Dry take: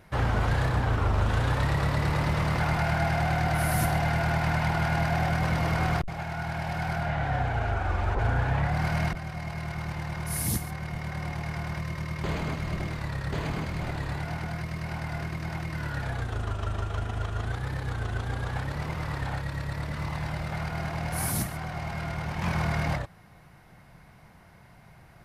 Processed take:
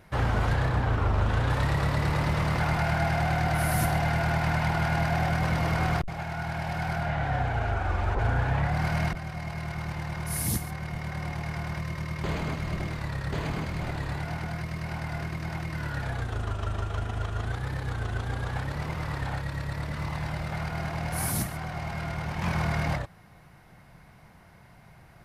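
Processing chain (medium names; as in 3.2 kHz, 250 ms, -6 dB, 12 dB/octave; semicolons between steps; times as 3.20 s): 0.54–1.50 s: peaking EQ 13 kHz -6 dB 1.9 oct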